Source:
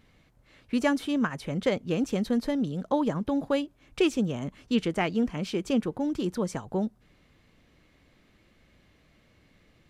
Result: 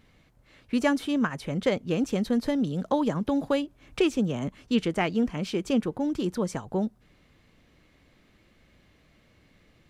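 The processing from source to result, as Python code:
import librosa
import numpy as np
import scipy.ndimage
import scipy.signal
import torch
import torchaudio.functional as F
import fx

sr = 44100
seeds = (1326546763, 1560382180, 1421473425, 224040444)

y = fx.band_squash(x, sr, depth_pct=40, at=(2.46, 4.48))
y = F.gain(torch.from_numpy(y), 1.0).numpy()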